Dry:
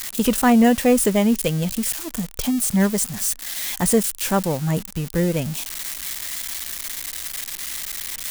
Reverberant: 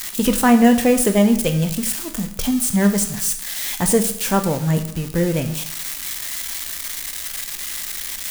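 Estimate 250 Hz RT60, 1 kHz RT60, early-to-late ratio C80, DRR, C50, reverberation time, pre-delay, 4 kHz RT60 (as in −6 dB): 0.65 s, 0.70 s, 14.0 dB, 6.5 dB, 11.0 dB, 0.70 s, 6 ms, 0.65 s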